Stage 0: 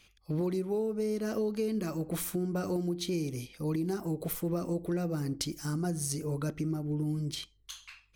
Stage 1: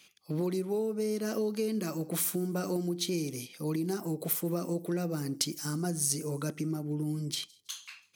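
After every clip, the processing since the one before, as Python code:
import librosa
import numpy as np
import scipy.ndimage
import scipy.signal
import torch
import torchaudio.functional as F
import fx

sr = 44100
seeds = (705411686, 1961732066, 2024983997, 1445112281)

y = scipy.signal.sosfilt(scipy.signal.butter(4, 140.0, 'highpass', fs=sr, output='sos'), x)
y = fx.high_shelf(y, sr, hz=3700.0, db=7.0)
y = fx.echo_wet_highpass(y, sr, ms=163, feedback_pct=41, hz=3900.0, wet_db=-23)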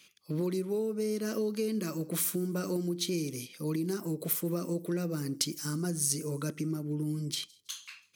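y = fx.peak_eq(x, sr, hz=760.0, db=-10.5, octaves=0.34)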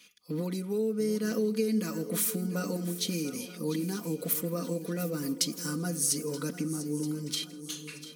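y = x + 0.7 * np.pad(x, (int(4.1 * sr / 1000.0), 0))[:len(x)]
y = fx.echo_swing(y, sr, ms=927, ratio=3, feedback_pct=40, wet_db=-14)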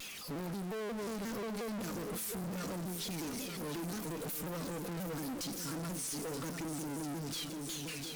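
y = x + 0.5 * 10.0 ** (-37.0 / 20.0) * np.sign(x)
y = fx.tube_stage(y, sr, drive_db=39.0, bias=0.8)
y = fx.vibrato_shape(y, sr, shape='saw_down', rate_hz=5.6, depth_cents=160.0)
y = y * librosa.db_to_amplitude(1.0)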